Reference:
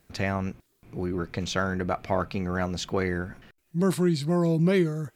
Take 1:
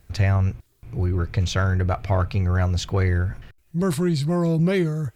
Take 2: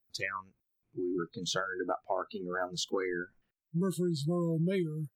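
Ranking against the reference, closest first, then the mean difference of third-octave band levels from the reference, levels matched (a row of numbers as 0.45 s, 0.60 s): 1, 2; 3.5 dB, 10.0 dB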